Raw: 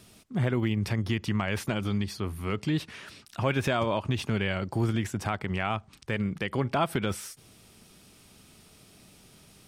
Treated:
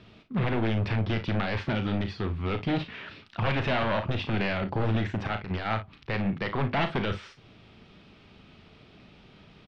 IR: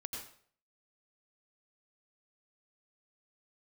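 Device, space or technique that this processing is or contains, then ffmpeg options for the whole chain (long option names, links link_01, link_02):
synthesiser wavefolder: -filter_complex "[0:a]aeval=exprs='0.0631*(abs(mod(val(0)/0.0631+3,4)-2)-1)':channel_layout=same,lowpass=frequency=3600:width=0.5412,lowpass=frequency=3600:width=1.3066,asettb=1/sr,asplit=3[link_01][link_02][link_03];[link_01]atrim=end=5.274[link_04];[link_02]atrim=start=5.27:end=5.78,asetpts=PTS-STARTPTS,afade=type=in:duration=0.004:curve=qsin,afade=type=out:start_time=0.506:duration=0.004:curve=qsin,agate=range=-7dB:threshold=-32dB:ratio=16:detection=peak[link_05];[link_03]atrim=start=5.776[link_06];[link_04][link_05]acrossfade=duration=0.004:curve1=hsin:curve2=qsin[link_07];[link_07][link_06]acrossfade=duration=0.004:curve1=qsin:curve2=hsin,aecho=1:1:36|56:0.355|0.2,volume=3dB"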